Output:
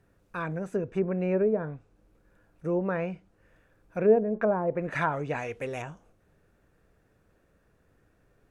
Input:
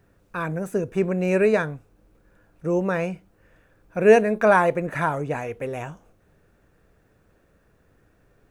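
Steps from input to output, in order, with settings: low-pass that closes with the level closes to 570 Hz, closed at -15 dBFS; 4.67–5.82 s: treble shelf 2.3 kHz +10 dB; trim -5 dB

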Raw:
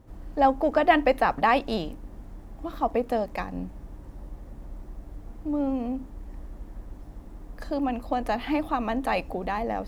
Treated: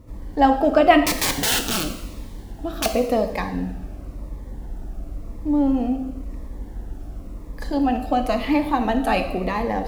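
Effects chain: 1.04–2.86 s: integer overflow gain 22 dB; on a send at -6 dB: reverberation, pre-delay 3 ms; on the sum: Shepard-style phaser falling 0.95 Hz; trim +7 dB

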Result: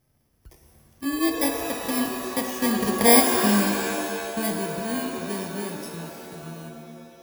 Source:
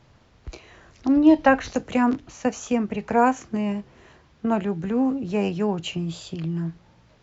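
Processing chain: bit-reversed sample order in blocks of 32 samples; Doppler pass-by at 3.24 s, 12 m/s, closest 6.4 m; pitch-shifted reverb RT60 2.2 s, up +7 st, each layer -2 dB, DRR 4.5 dB; trim +3 dB

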